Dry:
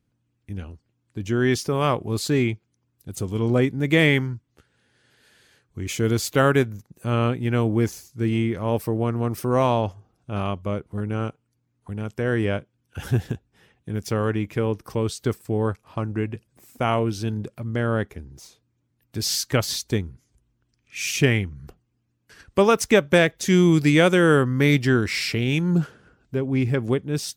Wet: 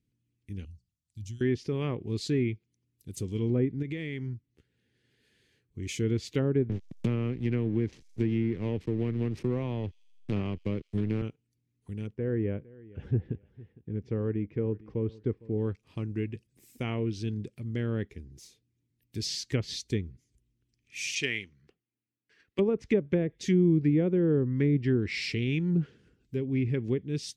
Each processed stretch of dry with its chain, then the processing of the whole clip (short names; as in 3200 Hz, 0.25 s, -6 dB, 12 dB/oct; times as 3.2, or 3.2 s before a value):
0.65–1.41 Chebyshev band-stop 110–4900 Hz + notches 60/120/180/240/300/360/420/480 Hz
3.82–5.83 high shelf 3800 Hz -11 dB + compressor 10:1, threshold -24 dBFS
6.69–11.22 backlash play -30 dBFS + thin delay 83 ms, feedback 50%, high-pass 4600 Hz, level -20 dB + three-band squash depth 100%
12.07–15.58 LPF 1300 Hz + bell 490 Hz +3.5 dB 0.22 oct + feedback echo 0.458 s, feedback 23%, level -21 dB
21.15–22.59 HPF 890 Hz 6 dB/oct + high shelf 3700 Hz +10.5 dB + low-pass opened by the level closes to 1500 Hz, open at -18.5 dBFS
whole clip: treble ducked by the level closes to 750 Hz, closed at -13 dBFS; band shelf 930 Hz -13 dB; gain -6 dB